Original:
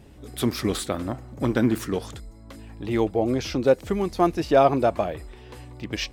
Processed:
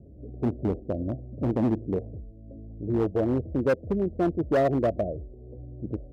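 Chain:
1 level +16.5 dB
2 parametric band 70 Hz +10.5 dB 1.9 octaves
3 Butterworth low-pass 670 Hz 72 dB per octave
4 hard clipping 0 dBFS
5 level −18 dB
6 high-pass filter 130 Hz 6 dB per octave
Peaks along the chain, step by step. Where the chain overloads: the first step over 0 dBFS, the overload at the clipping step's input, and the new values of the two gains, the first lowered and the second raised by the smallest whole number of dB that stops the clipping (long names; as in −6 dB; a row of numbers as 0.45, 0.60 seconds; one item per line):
+11.5, +11.5, +9.5, 0.0, −18.0, −15.0 dBFS
step 1, 9.5 dB
step 1 +6.5 dB, step 5 −8 dB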